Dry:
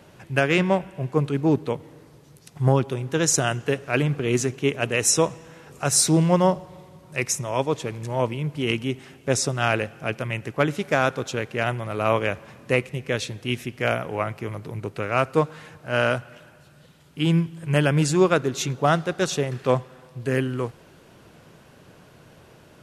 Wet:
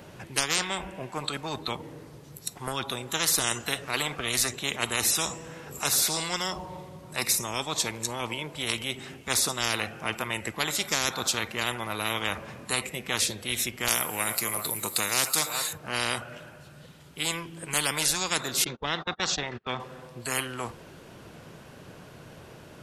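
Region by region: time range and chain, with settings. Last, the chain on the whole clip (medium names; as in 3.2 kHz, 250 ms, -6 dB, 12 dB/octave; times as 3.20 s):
13.88–15.73 s: RIAA curve recording + delay 383 ms -18 dB
18.64–19.80 s: gate -31 dBFS, range -34 dB + distance through air 190 m
whole clip: spectral noise reduction 15 dB; spectrum-flattening compressor 10:1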